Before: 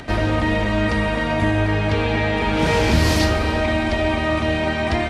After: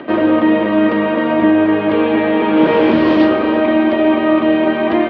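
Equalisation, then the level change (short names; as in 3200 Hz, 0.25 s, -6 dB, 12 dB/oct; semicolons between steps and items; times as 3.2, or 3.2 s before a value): speaker cabinet 220–3300 Hz, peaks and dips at 220 Hz +3 dB, 330 Hz +8 dB, 560 Hz +7 dB, 1100 Hz +9 dB, 1600 Hz +3 dB, 3100 Hz +4 dB; bell 320 Hz +8 dB 2.1 oct; -2.0 dB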